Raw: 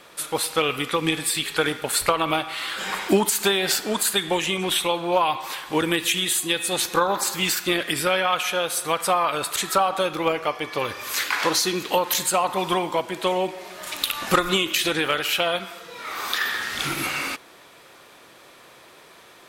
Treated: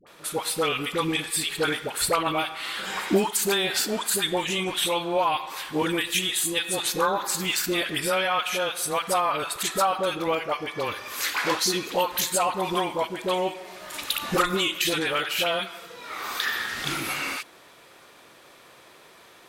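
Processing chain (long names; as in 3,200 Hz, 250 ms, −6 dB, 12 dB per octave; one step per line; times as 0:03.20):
all-pass dispersion highs, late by 69 ms, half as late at 760 Hz
level −2.5 dB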